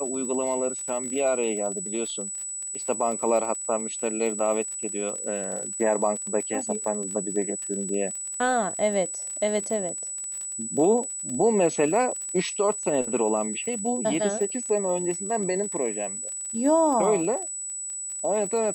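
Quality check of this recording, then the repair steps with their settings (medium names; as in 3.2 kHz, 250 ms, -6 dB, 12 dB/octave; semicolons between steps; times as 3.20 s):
crackle 35 per s -32 dBFS
whine 7.9 kHz -31 dBFS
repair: de-click; band-stop 7.9 kHz, Q 30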